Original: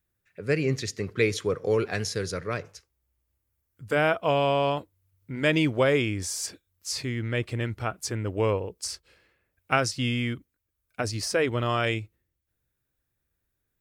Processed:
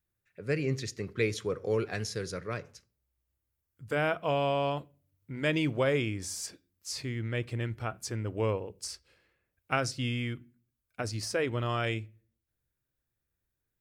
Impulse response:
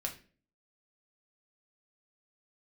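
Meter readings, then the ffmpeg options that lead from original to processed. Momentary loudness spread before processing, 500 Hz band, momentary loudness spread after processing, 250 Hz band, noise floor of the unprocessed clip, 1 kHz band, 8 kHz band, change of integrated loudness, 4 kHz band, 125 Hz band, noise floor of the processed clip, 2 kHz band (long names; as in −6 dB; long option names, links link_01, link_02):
12 LU, −5.5 dB, 11 LU, −5.0 dB, −80 dBFS, −5.5 dB, −6.0 dB, −5.5 dB, −6.0 dB, −3.5 dB, −85 dBFS, −6.0 dB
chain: -filter_complex "[0:a]asplit=2[link_01][link_02];[1:a]atrim=start_sample=2205,lowshelf=frequency=420:gain=8[link_03];[link_02][link_03]afir=irnorm=-1:irlink=0,volume=-16dB[link_04];[link_01][link_04]amix=inputs=2:normalize=0,volume=-7dB"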